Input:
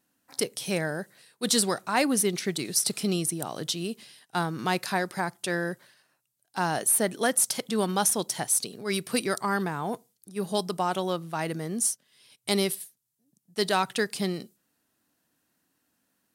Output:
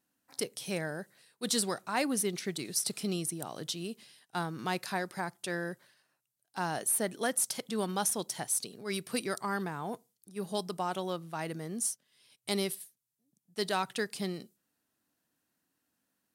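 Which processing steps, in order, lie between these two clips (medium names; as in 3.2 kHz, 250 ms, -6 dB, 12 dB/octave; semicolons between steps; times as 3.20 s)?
short-mantissa float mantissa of 6-bit; trim -6.5 dB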